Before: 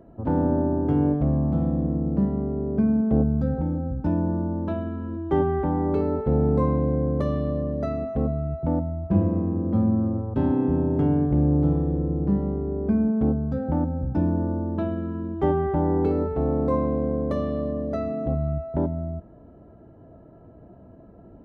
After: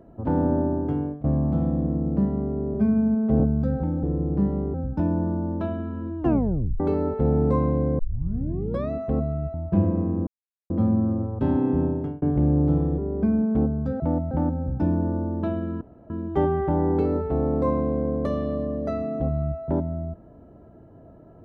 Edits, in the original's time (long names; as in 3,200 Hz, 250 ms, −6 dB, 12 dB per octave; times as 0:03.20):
0:00.48–0:01.24: fade out equal-power, to −20.5 dB
0:02.74–0:03.18: time-stretch 1.5×
0:05.26: tape stop 0.61 s
0:07.06: tape start 0.92 s
0:08.61–0:08.92: move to 0:13.66
0:09.65: splice in silence 0.43 s
0:10.79–0:11.17: fade out
0:11.93–0:12.64: move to 0:03.81
0:15.16: splice in room tone 0.29 s